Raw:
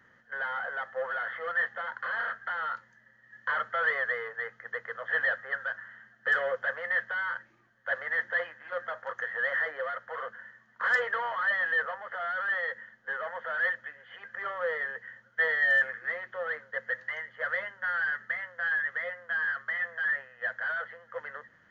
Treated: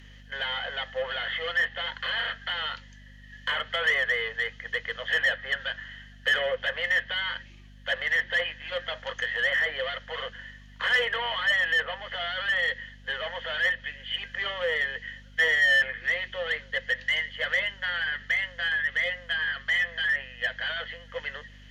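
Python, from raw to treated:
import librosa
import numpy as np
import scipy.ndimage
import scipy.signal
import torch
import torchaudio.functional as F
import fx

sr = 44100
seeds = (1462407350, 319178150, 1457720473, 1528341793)

p1 = fx.add_hum(x, sr, base_hz=50, snr_db=21)
p2 = fx.env_lowpass_down(p1, sr, base_hz=2500.0, full_db=-26.0)
p3 = fx.high_shelf_res(p2, sr, hz=2000.0, db=12.0, q=3.0)
p4 = np.clip(p3, -10.0 ** (-25.0 / 20.0), 10.0 ** (-25.0 / 20.0))
y = p3 + (p4 * librosa.db_to_amplitude(-6.0))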